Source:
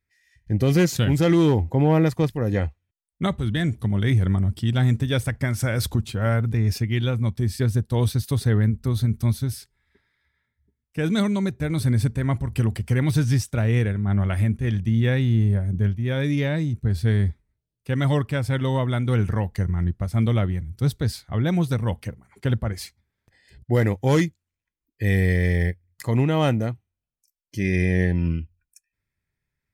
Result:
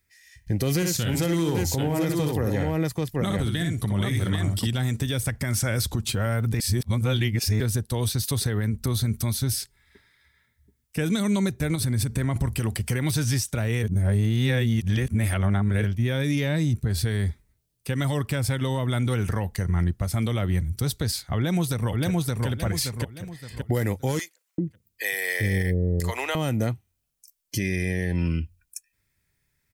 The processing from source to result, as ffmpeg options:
ffmpeg -i in.wav -filter_complex "[0:a]asettb=1/sr,asplit=3[link_01][link_02][link_03];[link_01]atrim=end=0.764[link_04];[link_02]atrim=start=0.76:end=4.67,asetpts=PTS-STARTPTS,afade=type=in:duration=0.004:curve=qsin,afade=type=out:start_time=3.906:duration=0.004:curve=qsin,aecho=1:1:60|787:0.531|0.531,atrim=end_sample=172431[link_05];[link_03]atrim=start=4.666[link_06];[link_04][link_05]acrossfade=duration=0.004:curve1=hsin:curve2=qsin[link_07];[link_07][link_06]acrossfade=duration=0.004:curve1=qsin:curve2=hsin,asettb=1/sr,asplit=3[link_08][link_09][link_10];[link_08]atrim=end=11.754[link_11];[link_09]atrim=start=11.75:end=12.36,asetpts=PTS-STARTPTS,afade=type=in:duration=0.004:curve=qsin,afade=type=out:start_time=0.606:duration=0.004:curve=qsin,acompressor=threshold=-25dB:ratio=10:attack=3.2:release=140:knee=1:detection=peak[link_12];[link_10]atrim=start=12.356[link_13];[link_11][link_12]acrossfade=duration=0.004:curve1=hsin:curve2=qsin[link_14];[link_14][link_13]acrossfade=duration=0.004:curve1=qsin:curve2=hsin,asplit=2[link_15][link_16];[link_16]afade=type=in:start_time=21.35:duration=0.01,afade=type=out:start_time=22.47:duration=0.01,aecho=0:1:570|1140|1710|2280:0.668344|0.200503|0.060151|0.0180453[link_17];[link_15][link_17]amix=inputs=2:normalize=0,asettb=1/sr,asplit=3[link_18][link_19][link_20];[link_18]atrim=end=24.194[link_21];[link_19]atrim=start=24.19:end=26.35,asetpts=PTS-STARTPTS,afade=type=in:duration=0.004:curve=qsin,afade=type=out:start_time=2.156:duration=0.004:curve=qsin,acrossover=split=560[link_22][link_23];[link_22]adelay=390[link_24];[link_24][link_23]amix=inputs=2:normalize=0,atrim=end_sample=95256[link_25];[link_20]atrim=start=26.346[link_26];[link_21][link_25]acrossfade=duration=0.004:curve1=hsin:curve2=qsin[link_27];[link_27][link_26]acrossfade=duration=0.004:curve1=qsin:curve2=hsin,asplit=5[link_28][link_29][link_30][link_31][link_32];[link_28]atrim=end=6.602[link_33];[link_29]atrim=start=6.598:end=7.602,asetpts=PTS-STARTPTS,areverse[link_34];[link_30]atrim=start=7.598:end=13.832[link_35];[link_31]atrim=start=13.828:end=15.842,asetpts=PTS-STARTPTS,areverse[link_36];[link_32]atrim=start=15.838[link_37];[link_33][link_34]acrossfade=duration=0.004:curve1=hsin:curve2=hsin[link_38];[link_38][link_35]acrossfade=duration=0.004:curve1=hsin:curve2=hsin[link_39];[link_39][link_36]acrossfade=duration=0.004:curve1=hsin:curve2=hsin[link_40];[link_40][link_37]acrossfade=duration=0.004:curve1=hsin:curve2=hsin,highshelf=frequency=4400:gain=10.5,acrossover=split=360|7900[link_41][link_42][link_43];[link_41]acompressor=threshold=-24dB:ratio=4[link_44];[link_42]acompressor=threshold=-28dB:ratio=4[link_45];[link_43]acompressor=threshold=-35dB:ratio=4[link_46];[link_44][link_45][link_46]amix=inputs=3:normalize=0,alimiter=limit=-22dB:level=0:latency=1:release=212,volume=6.5dB" out.wav

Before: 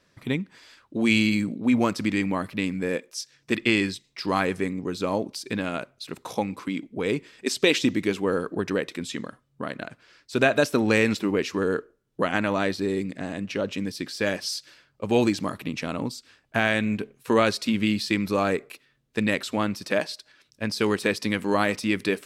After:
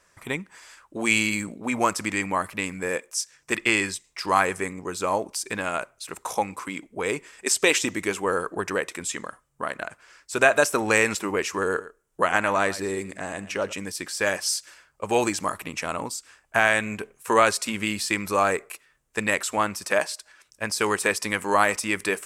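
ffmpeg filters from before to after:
ffmpeg -i in.wav -filter_complex "[0:a]asettb=1/sr,asplit=3[link_01][link_02][link_03];[link_01]atrim=end=11.654[link_04];[link_02]atrim=start=11.65:end=13.73,asetpts=PTS-STARTPTS,afade=type=in:duration=0.004:curve=qsin,afade=type=out:start_time=2.076:duration=0.004:curve=qsin,aecho=1:1:112:0.15,atrim=end_sample=91728[link_05];[link_03]atrim=start=13.726[link_06];[link_04][link_05]acrossfade=duration=0.004:curve1=hsin:curve2=qsin[link_07];[link_07][link_06]acrossfade=duration=0.004:curve1=qsin:curve2=hsin,equalizer=frequency=125:width_type=o:width=1:gain=-11,equalizer=frequency=250:width_type=o:width=1:gain=-11,equalizer=frequency=500:width_type=o:width=1:gain=-3,equalizer=frequency=1000:width_type=o:width=1:gain=3,equalizer=frequency=4000:width_type=o:width=1:gain=-10,equalizer=frequency=8000:width_type=o:width=1:gain=9,volume=5dB" out.wav

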